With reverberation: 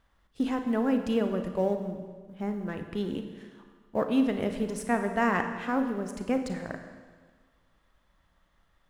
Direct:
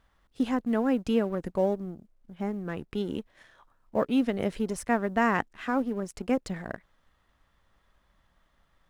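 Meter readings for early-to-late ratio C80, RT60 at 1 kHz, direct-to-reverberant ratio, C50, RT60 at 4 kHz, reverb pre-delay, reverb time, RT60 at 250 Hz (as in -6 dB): 9.0 dB, 1.5 s, 6.0 dB, 7.0 dB, 1.5 s, 34 ms, 1.5 s, 1.5 s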